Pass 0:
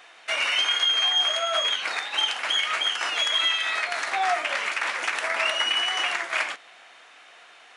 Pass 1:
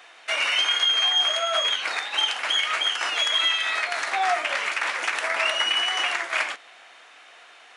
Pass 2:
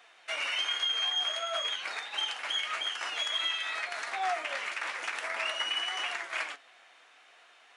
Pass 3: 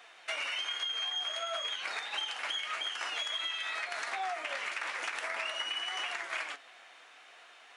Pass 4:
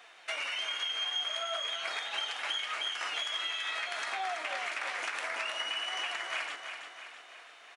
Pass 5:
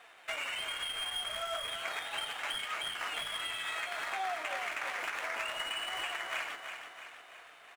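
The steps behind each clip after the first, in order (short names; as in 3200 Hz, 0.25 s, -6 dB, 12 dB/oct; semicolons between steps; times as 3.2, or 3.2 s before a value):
HPF 200 Hz 12 dB/oct; gain +1 dB
flange 0.49 Hz, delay 4.1 ms, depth 6.9 ms, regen +68%; gain -5 dB
compressor, threshold -36 dBFS, peak gain reduction 9 dB; gain +3 dB
feedback echo 0.33 s, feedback 51%, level -7.5 dB
median filter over 9 samples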